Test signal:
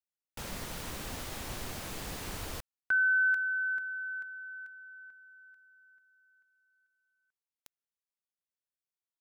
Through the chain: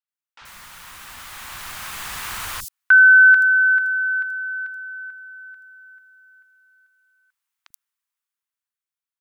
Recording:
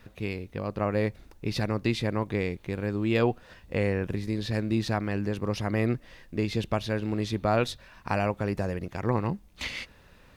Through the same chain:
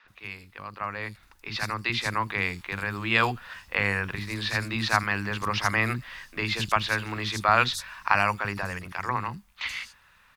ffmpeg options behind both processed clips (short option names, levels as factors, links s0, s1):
-filter_complex "[0:a]dynaudnorm=f=270:g=13:m=5.01,lowshelf=f=770:t=q:w=1.5:g=-12.5,acrossover=split=300|5100[s0][s1][s2];[s0]adelay=40[s3];[s2]adelay=80[s4];[s3][s1][s4]amix=inputs=3:normalize=0"